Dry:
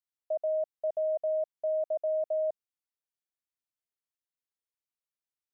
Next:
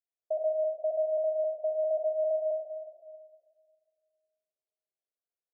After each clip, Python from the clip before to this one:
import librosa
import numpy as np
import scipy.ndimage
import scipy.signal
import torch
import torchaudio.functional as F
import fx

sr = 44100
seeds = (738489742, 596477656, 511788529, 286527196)

y = fx.dynamic_eq(x, sr, hz=520.0, q=2.4, threshold_db=-43.0, ratio=4.0, max_db=-5)
y = scipy.signal.sosfilt(scipy.signal.cheby1(5, 1.0, [360.0, 800.0], 'bandpass', fs=sr, output='sos'), y)
y = fx.room_shoebox(y, sr, seeds[0], volume_m3=2200.0, walls='mixed', distance_m=2.8)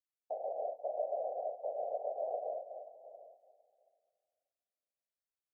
y = fx.dynamic_eq(x, sr, hz=530.0, q=3.1, threshold_db=-44.0, ratio=4.0, max_db=-4)
y = fx.whisperise(y, sr, seeds[1])
y = y + 10.0 ** (-19.0 / 20.0) * np.pad(y, (int(728 * sr / 1000.0), 0))[:len(y)]
y = y * librosa.db_to_amplitude(-7.0)